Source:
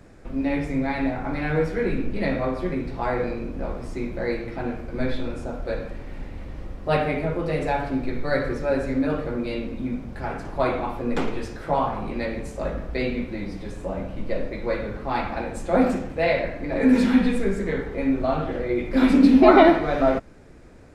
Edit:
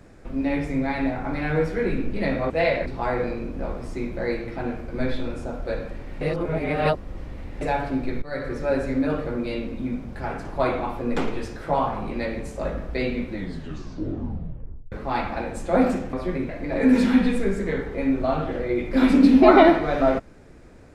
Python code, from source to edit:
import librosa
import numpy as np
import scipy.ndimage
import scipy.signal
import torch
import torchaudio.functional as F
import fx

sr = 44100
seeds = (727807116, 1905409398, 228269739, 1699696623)

y = fx.edit(x, sr, fx.swap(start_s=2.5, length_s=0.36, other_s=16.13, other_length_s=0.36),
    fx.reverse_span(start_s=6.21, length_s=1.4),
    fx.fade_in_from(start_s=8.22, length_s=0.43, floor_db=-15.0),
    fx.tape_stop(start_s=13.32, length_s=1.6), tone=tone)